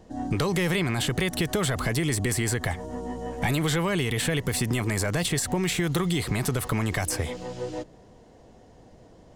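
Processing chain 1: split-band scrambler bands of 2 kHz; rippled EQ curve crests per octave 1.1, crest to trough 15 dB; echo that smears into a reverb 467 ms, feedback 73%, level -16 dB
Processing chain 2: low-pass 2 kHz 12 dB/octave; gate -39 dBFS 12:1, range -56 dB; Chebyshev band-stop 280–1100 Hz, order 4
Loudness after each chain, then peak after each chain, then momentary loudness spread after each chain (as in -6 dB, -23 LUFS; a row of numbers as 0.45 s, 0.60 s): -22.0 LUFS, -29.5 LUFS; -9.5 dBFS, -16.0 dBFS; 17 LU, 10 LU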